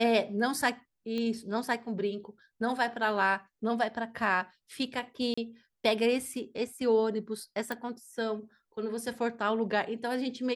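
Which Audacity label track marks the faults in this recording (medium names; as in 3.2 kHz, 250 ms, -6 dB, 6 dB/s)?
1.180000	1.180000	pop -23 dBFS
5.340000	5.380000	dropout 35 ms
7.720000	7.720000	pop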